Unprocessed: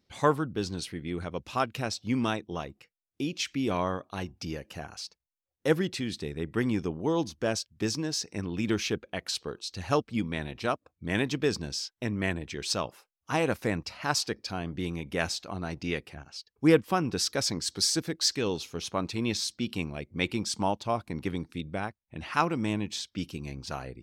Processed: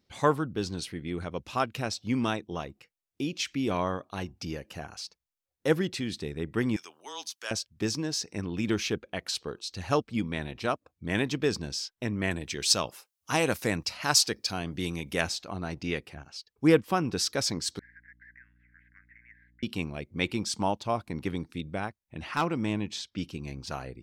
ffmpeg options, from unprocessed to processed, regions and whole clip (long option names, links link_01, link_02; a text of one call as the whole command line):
ffmpeg -i in.wav -filter_complex "[0:a]asettb=1/sr,asplit=3[link_01][link_02][link_03];[link_01]atrim=end=6.764[link_04];[link_02]atrim=start=6.76:end=7.51,asetpts=PTS-STARTPTS,afade=type=in:duration=0.004:curve=qsin,afade=type=out:start_time=0.746:duration=0.004:curve=qsin,highpass=1400,highshelf=frequency=4200:gain=9,afreqshift=-20[link_05];[link_03]atrim=start=7.506[link_06];[link_04][link_05]acrossfade=duration=0.004:curve1=hsin:curve2=qsin[link_07];[link_07][link_06]acrossfade=duration=0.004:curve1=qsin:curve2=hsin,asettb=1/sr,asplit=3[link_08][link_09][link_10];[link_08]atrim=end=12.314[link_11];[link_09]atrim=start=12.31:end=15.21,asetpts=PTS-STARTPTS,afade=type=in:duration=0.004:curve=qsin,afade=type=out:start_time=2.896:duration=0.004:curve=qsin,highpass=45,highshelf=frequency=3400:gain=10.5[link_12];[link_10]atrim=start=15.206[link_13];[link_11][link_12]acrossfade=duration=0.004:curve1=hsin:curve2=qsin[link_14];[link_14][link_13]acrossfade=duration=0.004:curve1=qsin:curve2=hsin,asettb=1/sr,asplit=3[link_15][link_16][link_17];[link_15]atrim=end=17.794[link_18];[link_16]atrim=start=17.79:end=19.63,asetpts=PTS-STARTPTS,afade=type=in:duration=0.004:curve=qsin,afade=type=out:start_time=1.836:duration=0.004:curve=qsin,asuperpass=centerf=1800:order=8:qfactor=3.3,acompressor=threshold=-49dB:ratio=6:attack=3.2:release=140:knee=1:detection=peak,aeval=exprs='val(0)+0.000708*(sin(2*PI*60*n/s)+sin(2*PI*2*60*n/s)/2+sin(2*PI*3*60*n/s)/3+sin(2*PI*4*60*n/s)/4+sin(2*PI*5*60*n/s)/5)':channel_layout=same[link_19];[link_17]atrim=start=19.626[link_20];[link_18][link_19]acrossfade=duration=0.004:curve1=hsin:curve2=qsin[link_21];[link_21][link_20]acrossfade=duration=0.004:curve1=qsin:curve2=hsin,asettb=1/sr,asplit=3[link_22][link_23][link_24];[link_22]atrim=end=22.314[link_25];[link_23]atrim=start=22.31:end=23.48,asetpts=PTS-STARTPTS,afade=type=in:duration=0.004:curve=qsin,afade=type=out:start_time=1.166:duration=0.004:curve=qsin,highshelf=frequency=9500:gain=-10,volume=19.5dB,asoftclip=hard,volume=-19.5dB[link_26];[link_24]atrim=start=23.476[link_27];[link_25][link_26]acrossfade=duration=0.004:curve1=hsin:curve2=qsin[link_28];[link_28][link_27]acrossfade=duration=0.004:curve1=qsin:curve2=hsin" out.wav